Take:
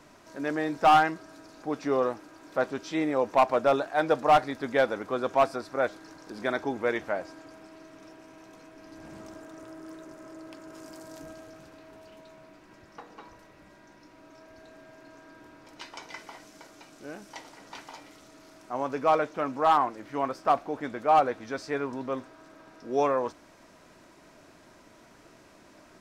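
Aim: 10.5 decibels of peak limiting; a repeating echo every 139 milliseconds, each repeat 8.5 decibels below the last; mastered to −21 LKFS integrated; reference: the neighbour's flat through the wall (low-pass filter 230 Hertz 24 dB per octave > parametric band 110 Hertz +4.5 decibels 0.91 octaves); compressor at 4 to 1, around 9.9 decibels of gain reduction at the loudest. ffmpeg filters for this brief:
ffmpeg -i in.wav -af "acompressor=threshold=-28dB:ratio=4,alimiter=level_in=2.5dB:limit=-24dB:level=0:latency=1,volume=-2.5dB,lowpass=frequency=230:width=0.5412,lowpass=frequency=230:width=1.3066,equalizer=frequency=110:width_type=o:width=0.91:gain=4.5,aecho=1:1:139|278|417|556:0.376|0.143|0.0543|0.0206,volume=30dB" out.wav

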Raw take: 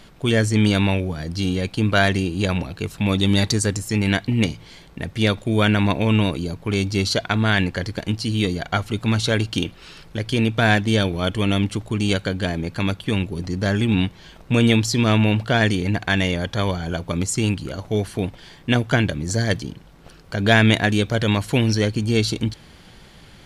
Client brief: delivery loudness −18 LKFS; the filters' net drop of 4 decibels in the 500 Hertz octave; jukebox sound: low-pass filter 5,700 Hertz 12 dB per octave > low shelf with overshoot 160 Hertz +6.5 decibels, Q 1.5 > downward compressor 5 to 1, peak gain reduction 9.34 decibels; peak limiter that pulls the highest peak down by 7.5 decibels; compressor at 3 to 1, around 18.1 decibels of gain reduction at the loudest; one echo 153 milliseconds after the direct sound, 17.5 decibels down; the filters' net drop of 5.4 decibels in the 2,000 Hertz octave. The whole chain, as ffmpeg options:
ffmpeg -i in.wav -af "equalizer=frequency=500:width_type=o:gain=-4,equalizer=frequency=2000:width_type=o:gain=-7,acompressor=threshold=-39dB:ratio=3,alimiter=level_in=5.5dB:limit=-24dB:level=0:latency=1,volume=-5.5dB,lowpass=5700,lowshelf=frequency=160:width_type=q:width=1.5:gain=6.5,aecho=1:1:153:0.133,acompressor=threshold=-37dB:ratio=5,volume=23.5dB" out.wav

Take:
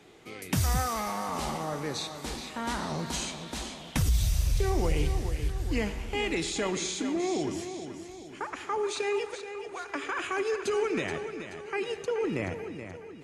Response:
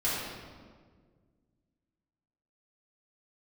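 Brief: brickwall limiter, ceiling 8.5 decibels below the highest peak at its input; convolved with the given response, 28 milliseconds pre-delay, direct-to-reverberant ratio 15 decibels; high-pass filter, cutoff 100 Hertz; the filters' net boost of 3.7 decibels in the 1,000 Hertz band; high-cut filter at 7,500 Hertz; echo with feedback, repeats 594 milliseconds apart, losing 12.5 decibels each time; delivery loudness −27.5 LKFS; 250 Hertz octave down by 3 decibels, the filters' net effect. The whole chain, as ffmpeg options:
-filter_complex "[0:a]highpass=100,lowpass=7500,equalizer=frequency=250:width_type=o:gain=-4.5,equalizer=frequency=1000:width_type=o:gain=5,alimiter=level_in=0.5dB:limit=-24dB:level=0:latency=1,volume=-0.5dB,aecho=1:1:594|1188|1782:0.237|0.0569|0.0137,asplit=2[link_01][link_02];[1:a]atrim=start_sample=2205,adelay=28[link_03];[link_02][link_03]afir=irnorm=-1:irlink=0,volume=-24.5dB[link_04];[link_01][link_04]amix=inputs=2:normalize=0,volume=7dB"

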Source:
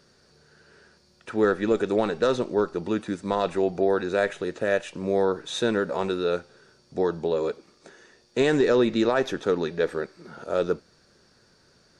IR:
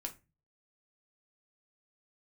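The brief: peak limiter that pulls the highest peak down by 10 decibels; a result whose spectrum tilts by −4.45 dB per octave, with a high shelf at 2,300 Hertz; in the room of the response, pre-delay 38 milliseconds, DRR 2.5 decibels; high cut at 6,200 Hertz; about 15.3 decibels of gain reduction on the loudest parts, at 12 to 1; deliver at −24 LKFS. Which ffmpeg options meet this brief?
-filter_complex "[0:a]lowpass=6200,highshelf=frequency=2300:gain=-4.5,acompressor=threshold=-33dB:ratio=12,alimiter=level_in=7.5dB:limit=-24dB:level=0:latency=1,volume=-7.5dB,asplit=2[link_01][link_02];[1:a]atrim=start_sample=2205,adelay=38[link_03];[link_02][link_03]afir=irnorm=-1:irlink=0,volume=-1dB[link_04];[link_01][link_04]amix=inputs=2:normalize=0,volume=16.5dB"

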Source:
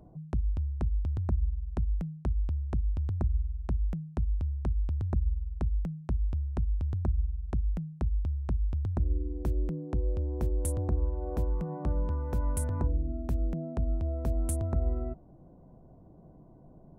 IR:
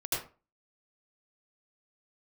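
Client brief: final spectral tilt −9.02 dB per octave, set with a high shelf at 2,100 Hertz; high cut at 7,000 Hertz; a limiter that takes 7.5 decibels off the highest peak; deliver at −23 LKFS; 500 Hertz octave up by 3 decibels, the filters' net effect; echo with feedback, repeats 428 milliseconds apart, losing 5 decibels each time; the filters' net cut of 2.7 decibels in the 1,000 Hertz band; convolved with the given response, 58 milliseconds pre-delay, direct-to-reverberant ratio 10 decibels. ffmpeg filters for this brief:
-filter_complex "[0:a]lowpass=7000,equalizer=frequency=500:width_type=o:gain=5.5,equalizer=frequency=1000:width_type=o:gain=-8,highshelf=frequency=2100:gain=7,alimiter=level_in=0.5dB:limit=-24dB:level=0:latency=1,volume=-0.5dB,aecho=1:1:428|856|1284|1712|2140|2568|2996:0.562|0.315|0.176|0.0988|0.0553|0.031|0.0173,asplit=2[link_01][link_02];[1:a]atrim=start_sample=2205,adelay=58[link_03];[link_02][link_03]afir=irnorm=-1:irlink=0,volume=-15.5dB[link_04];[link_01][link_04]amix=inputs=2:normalize=0,volume=10dB"

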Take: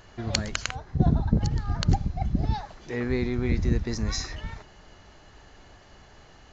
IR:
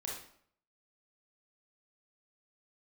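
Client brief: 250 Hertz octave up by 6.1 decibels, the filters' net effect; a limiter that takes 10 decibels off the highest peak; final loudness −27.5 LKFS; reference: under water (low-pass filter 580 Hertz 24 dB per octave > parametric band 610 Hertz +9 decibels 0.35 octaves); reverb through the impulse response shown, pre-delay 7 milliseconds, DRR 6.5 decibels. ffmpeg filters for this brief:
-filter_complex "[0:a]equalizer=frequency=250:width_type=o:gain=7.5,alimiter=limit=-15dB:level=0:latency=1,asplit=2[link_01][link_02];[1:a]atrim=start_sample=2205,adelay=7[link_03];[link_02][link_03]afir=irnorm=-1:irlink=0,volume=-7dB[link_04];[link_01][link_04]amix=inputs=2:normalize=0,lowpass=frequency=580:width=0.5412,lowpass=frequency=580:width=1.3066,equalizer=frequency=610:width_type=o:width=0.35:gain=9,volume=-0.5dB"

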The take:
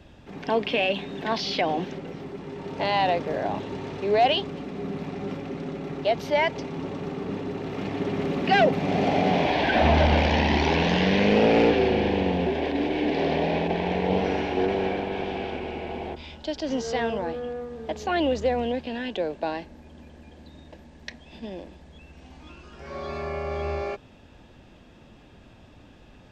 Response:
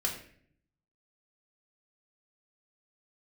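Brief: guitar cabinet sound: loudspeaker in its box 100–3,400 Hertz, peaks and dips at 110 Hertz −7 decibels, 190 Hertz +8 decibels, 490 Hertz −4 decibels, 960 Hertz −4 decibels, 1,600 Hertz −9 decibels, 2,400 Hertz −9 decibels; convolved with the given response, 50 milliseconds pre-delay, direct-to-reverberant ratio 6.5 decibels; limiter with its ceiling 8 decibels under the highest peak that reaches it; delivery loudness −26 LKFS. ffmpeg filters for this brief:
-filter_complex "[0:a]alimiter=limit=-16.5dB:level=0:latency=1,asplit=2[link_01][link_02];[1:a]atrim=start_sample=2205,adelay=50[link_03];[link_02][link_03]afir=irnorm=-1:irlink=0,volume=-11dB[link_04];[link_01][link_04]amix=inputs=2:normalize=0,highpass=100,equalizer=frequency=110:width_type=q:width=4:gain=-7,equalizer=frequency=190:width_type=q:width=4:gain=8,equalizer=frequency=490:width_type=q:width=4:gain=-4,equalizer=frequency=960:width_type=q:width=4:gain=-4,equalizer=frequency=1600:width_type=q:width=4:gain=-9,equalizer=frequency=2400:width_type=q:width=4:gain=-9,lowpass=frequency=3400:width=0.5412,lowpass=frequency=3400:width=1.3066,volume=1.5dB"

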